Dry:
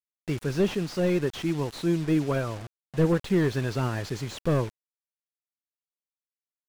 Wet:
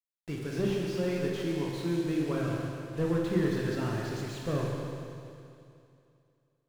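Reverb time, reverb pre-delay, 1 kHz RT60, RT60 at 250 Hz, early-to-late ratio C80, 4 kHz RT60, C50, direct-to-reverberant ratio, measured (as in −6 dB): 2.6 s, 16 ms, 2.6 s, 2.6 s, 1.0 dB, 2.6 s, 0.0 dB, −2.0 dB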